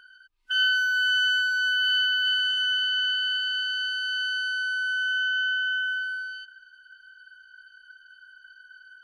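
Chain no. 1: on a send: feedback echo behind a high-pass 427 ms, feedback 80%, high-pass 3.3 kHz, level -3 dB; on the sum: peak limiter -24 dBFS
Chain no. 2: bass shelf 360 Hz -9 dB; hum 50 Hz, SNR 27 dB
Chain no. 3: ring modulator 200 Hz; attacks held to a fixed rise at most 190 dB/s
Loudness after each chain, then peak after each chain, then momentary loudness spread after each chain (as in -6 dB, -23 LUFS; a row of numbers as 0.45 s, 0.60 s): -28.5 LUFS, -24.0 LUFS, -26.5 LUFS; -24.0 dBFS, -16.0 dBFS, -17.0 dBFS; 11 LU, 6 LU, 7 LU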